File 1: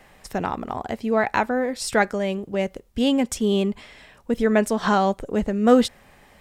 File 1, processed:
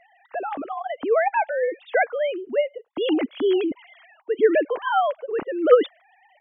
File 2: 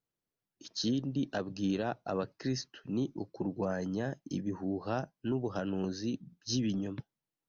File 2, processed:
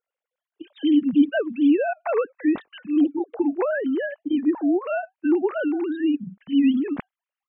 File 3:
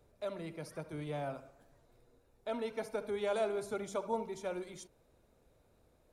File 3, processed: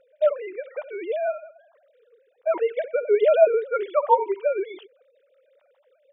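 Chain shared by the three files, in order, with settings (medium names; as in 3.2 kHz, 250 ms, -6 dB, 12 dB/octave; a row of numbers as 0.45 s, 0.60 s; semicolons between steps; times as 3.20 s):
formants replaced by sine waves; normalise loudness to -23 LUFS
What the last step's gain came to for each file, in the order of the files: -0.5 dB, +12.5 dB, +15.5 dB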